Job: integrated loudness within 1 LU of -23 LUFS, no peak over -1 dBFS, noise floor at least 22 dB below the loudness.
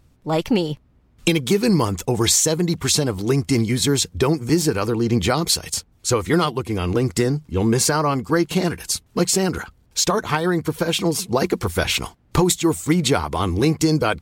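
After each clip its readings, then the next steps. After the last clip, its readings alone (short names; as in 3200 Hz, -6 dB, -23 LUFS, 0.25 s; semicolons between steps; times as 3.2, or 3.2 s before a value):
loudness -20.0 LUFS; peak -4.5 dBFS; loudness target -23.0 LUFS
-> gain -3 dB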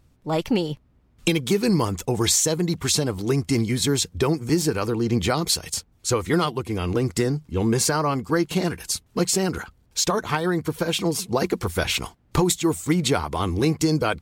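loudness -23.0 LUFS; peak -7.5 dBFS; noise floor -60 dBFS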